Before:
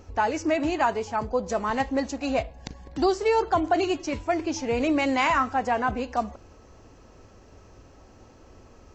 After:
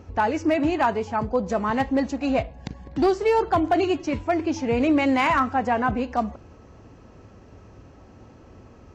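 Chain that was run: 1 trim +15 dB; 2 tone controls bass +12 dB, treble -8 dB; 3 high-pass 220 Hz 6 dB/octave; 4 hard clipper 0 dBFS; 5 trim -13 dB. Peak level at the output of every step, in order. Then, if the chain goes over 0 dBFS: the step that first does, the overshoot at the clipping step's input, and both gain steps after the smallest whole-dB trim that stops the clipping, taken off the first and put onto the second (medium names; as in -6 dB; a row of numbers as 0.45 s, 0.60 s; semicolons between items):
+4.0 dBFS, +6.5 dBFS, +4.0 dBFS, 0.0 dBFS, -13.0 dBFS; step 1, 4.0 dB; step 1 +11 dB, step 5 -9 dB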